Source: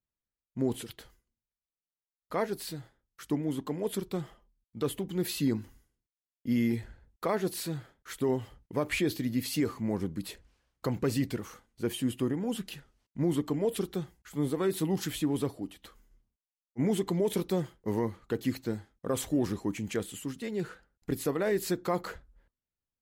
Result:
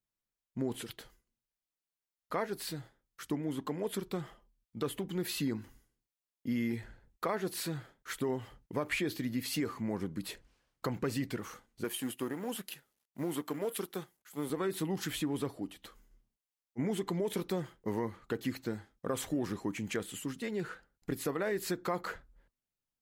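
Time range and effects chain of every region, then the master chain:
11.84–14.50 s: companding laws mixed up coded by A + high-pass 330 Hz 6 dB/octave + peaking EQ 12 kHz +9.5 dB 0.73 oct
whole clip: dynamic bell 1.5 kHz, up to +5 dB, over -49 dBFS, Q 0.8; compression 2:1, threshold -34 dBFS; peaking EQ 66 Hz -13.5 dB 0.48 oct

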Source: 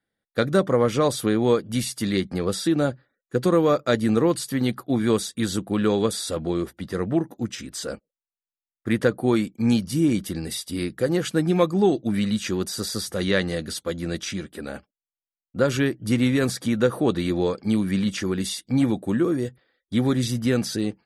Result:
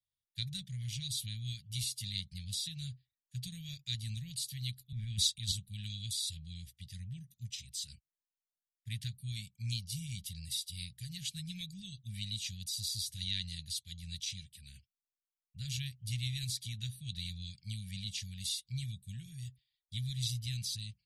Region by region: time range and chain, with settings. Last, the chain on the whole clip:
4.92–5.52 s: treble shelf 7.9 kHz -11.5 dB + transient shaper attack +2 dB, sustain +11 dB + three bands expanded up and down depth 70%
whole clip: inverse Chebyshev band-stop 280–1300 Hz, stop band 50 dB; dynamic bell 4 kHz, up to +7 dB, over -52 dBFS, Q 7.2; trim -7.5 dB

